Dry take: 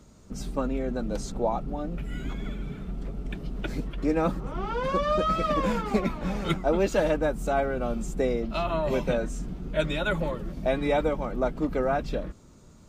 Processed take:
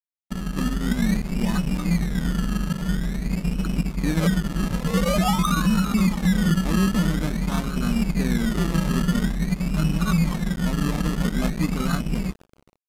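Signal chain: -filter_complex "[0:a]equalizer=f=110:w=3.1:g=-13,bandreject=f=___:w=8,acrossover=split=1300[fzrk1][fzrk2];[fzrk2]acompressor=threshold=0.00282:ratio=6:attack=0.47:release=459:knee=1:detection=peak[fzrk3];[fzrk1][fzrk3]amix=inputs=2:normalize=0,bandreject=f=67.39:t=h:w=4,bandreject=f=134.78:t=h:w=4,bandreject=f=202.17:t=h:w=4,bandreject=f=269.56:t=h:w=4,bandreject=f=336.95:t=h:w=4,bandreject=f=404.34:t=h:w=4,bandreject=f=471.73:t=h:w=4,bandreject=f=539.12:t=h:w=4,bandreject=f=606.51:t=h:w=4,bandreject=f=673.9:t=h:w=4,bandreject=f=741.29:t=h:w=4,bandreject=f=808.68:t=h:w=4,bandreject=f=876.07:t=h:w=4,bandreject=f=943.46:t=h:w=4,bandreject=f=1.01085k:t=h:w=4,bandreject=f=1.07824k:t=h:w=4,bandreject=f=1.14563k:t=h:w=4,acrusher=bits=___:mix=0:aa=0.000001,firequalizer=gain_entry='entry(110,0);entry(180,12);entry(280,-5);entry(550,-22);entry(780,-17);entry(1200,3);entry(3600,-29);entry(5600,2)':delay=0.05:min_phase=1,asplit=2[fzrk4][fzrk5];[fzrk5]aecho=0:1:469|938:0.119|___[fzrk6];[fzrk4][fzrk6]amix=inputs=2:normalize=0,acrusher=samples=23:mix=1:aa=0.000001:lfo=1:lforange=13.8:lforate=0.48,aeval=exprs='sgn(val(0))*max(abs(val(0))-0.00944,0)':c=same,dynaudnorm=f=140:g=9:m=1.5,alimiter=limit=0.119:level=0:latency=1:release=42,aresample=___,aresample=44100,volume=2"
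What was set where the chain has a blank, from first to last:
2.7k, 9, 0.0333, 32000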